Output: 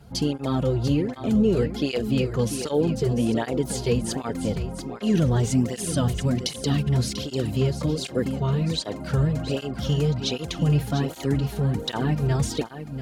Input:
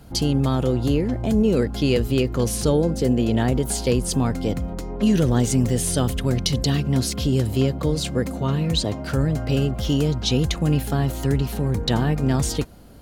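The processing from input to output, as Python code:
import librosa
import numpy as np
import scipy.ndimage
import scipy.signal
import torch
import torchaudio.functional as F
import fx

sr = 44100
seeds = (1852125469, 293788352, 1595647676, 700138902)

y = fx.high_shelf(x, sr, hz=10000.0, db=-8.0)
y = y + 10.0 ** (-10.5 / 20.0) * np.pad(y, (int(694 * sr / 1000.0), 0))[:len(y)]
y = fx.flanger_cancel(y, sr, hz=1.3, depth_ms=4.1)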